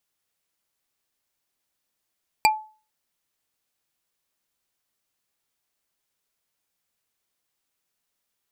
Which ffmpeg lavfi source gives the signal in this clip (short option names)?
-f lavfi -i "aevalsrc='0.251*pow(10,-3*t/0.37)*sin(2*PI*864*t)+0.2*pow(10,-3*t/0.11)*sin(2*PI*2382*t)+0.158*pow(10,-3*t/0.049)*sin(2*PI*4669.1*t)+0.126*pow(10,-3*t/0.027)*sin(2*PI*7718.1*t)+0.1*pow(10,-3*t/0.017)*sin(2*PI*11525.8*t)':d=0.45:s=44100"